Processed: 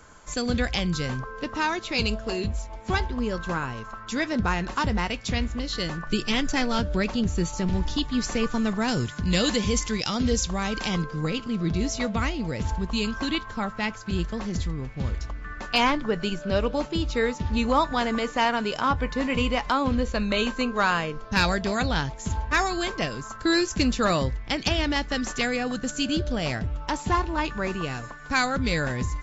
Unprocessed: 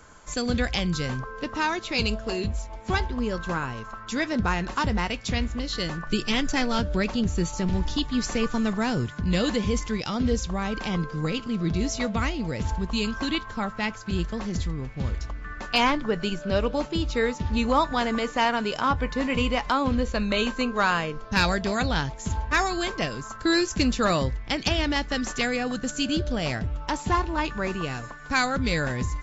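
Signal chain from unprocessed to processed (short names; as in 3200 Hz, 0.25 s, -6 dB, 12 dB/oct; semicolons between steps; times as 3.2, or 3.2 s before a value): 8.88–11.03 high shelf 3300 Hz +10 dB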